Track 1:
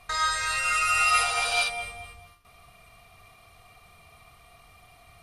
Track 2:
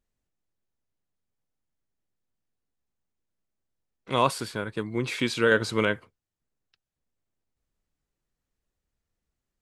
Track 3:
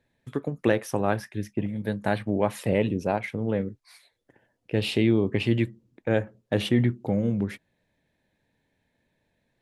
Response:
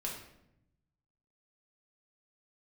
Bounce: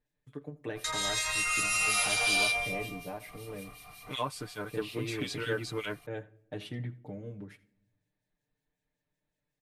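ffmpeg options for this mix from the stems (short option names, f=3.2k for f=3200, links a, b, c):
-filter_complex "[0:a]aemphasis=mode=production:type=cd,adelay=750,volume=3dB,asplit=2[a][b];[b]volume=-11.5dB[c];[1:a]volume=-4dB,asplit=2[d][e];[2:a]volume=-18dB,asplit=3[f][g][h];[g]volume=-17.5dB[i];[h]volume=-20dB[j];[e]apad=whole_len=263536[k];[a][k]sidechaincompress=threshold=-32dB:ratio=8:attack=5.9:release=404[l];[l][d]amix=inputs=2:normalize=0,acrossover=split=2100[m][n];[m]aeval=exprs='val(0)*(1-1/2+1/2*cos(2*PI*5.4*n/s))':c=same[o];[n]aeval=exprs='val(0)*(1-1/2-1/2*cos(2*PI*5.4*n/s))':c=same[p];[o][p]amix=inputs=2:normalize=0,acompressor=threshold=-32dB:ratio=5,volume=0dB[q];[3:a]atrim=start_sample=2205[r];[i][r]afir=irnorm=-1:irlink=0[s];[c][j]amix=inputs=2:normalize=0,aecho=0:1:82:1[t];[f][q][s][t]amix=inputs=4:normalize=0,aecho=1:1:6.7:0.87"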